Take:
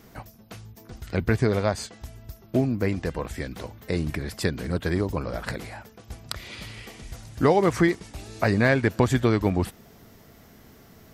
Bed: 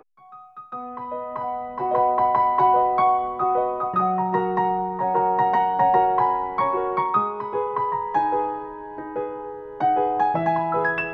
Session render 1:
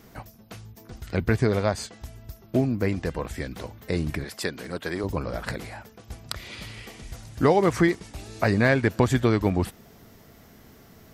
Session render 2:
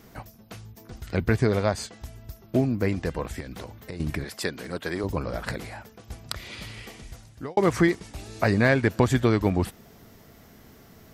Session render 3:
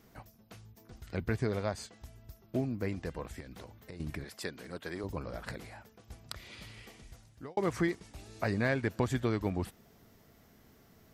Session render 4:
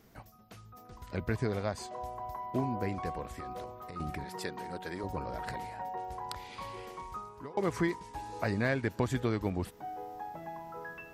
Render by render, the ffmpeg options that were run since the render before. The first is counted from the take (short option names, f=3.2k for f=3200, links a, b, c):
-filter_complex "[0:a]asettb=1/sr,asplit=3[a][b][c];[a]atrim=end=4.244[d];[b]atrim=start=4.24:end=5.04,asetpts=PTS-STARTPTS,afade=t=in:d=0.004:c=qsin,afade=t=out:st=0.796:d=0.004:c=qsin,highpass=f=430:p=1[e];[c]atrim=start=5.036[f];[d][e]acrossfade=d=0.004:c1=hsin:c2=qsin[g];[g][f]acrossfade=d=0.004:c1=qsin:c2=hsin"
-filter_complex "[0:a]asettb=1/sr,asplit=3[a][b][c];[a]atrim=end=3.404[d];[b]atrim=start=3.4:end=4,asetpts=PTS-STARTPTS,afade=t=in:d=0.004:c=qsin,afade=t=out:st=0.596:d=0.004:c=qsin,acompressor=threshold=-32dB:ratio=10:attack=3.2:release=140:knee=1:detection=peak[e];[c]atrim=start=3.996[f];[d][e]acrossfade=d=0.004:c1=hsin:c2=qsin[g];[g][f]acrossfade=d=0.004:c1=qsin:c2=hsin,asplit=2[h][i];[h]atrim=end=7.57,asetpts=PTS-STARTPTS,afade=t=out:st=6.91:d=0.66[j];[i]atrim=start=7.57,asetpts=PTS-STARTPTS,afade=t=in:d=0.004:c=hsin[k];[j][k]concat=n=2:v=0:a=1"
-af "volume=-10dB"
-filter_complex "[1:a]volume=-21.5dB[a];[0:a][a]amix=inputs=2:normalize=0"